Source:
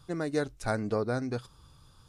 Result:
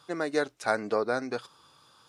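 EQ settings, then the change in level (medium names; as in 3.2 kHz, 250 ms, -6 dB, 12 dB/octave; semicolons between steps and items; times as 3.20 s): Bessel high-pass 360 Hz, order 2; bass shelf 480 Hz -5 dB; treble shelf 6.7 kHz -9.5 dB; +7.0 dB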